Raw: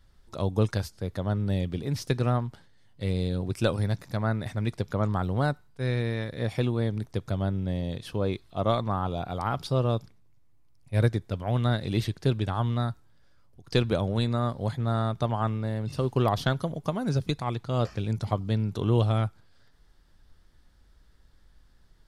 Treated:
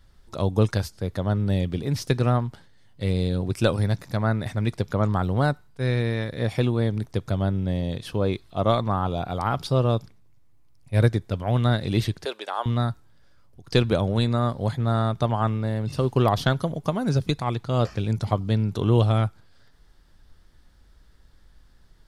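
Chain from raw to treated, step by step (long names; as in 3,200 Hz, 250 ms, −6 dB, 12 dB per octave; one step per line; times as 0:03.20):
0:12.25–0:12.66: high-pass filter 470 Hz 24 dB per octave
level +4 dB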